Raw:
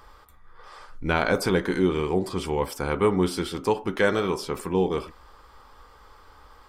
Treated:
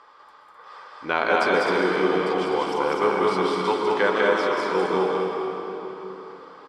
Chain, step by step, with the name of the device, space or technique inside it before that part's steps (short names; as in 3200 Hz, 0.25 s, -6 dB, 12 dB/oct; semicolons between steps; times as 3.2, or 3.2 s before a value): station announcement (BPF 360–4600 Hz; bell 1100 Hz +4 dB 0.47 oct; loudspeakers at several distances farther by 68 m -2 dB, 88 m -6 dB; reverb RT60 3.8 s, pre-delay 0.119 s, DRR 1.5 dB)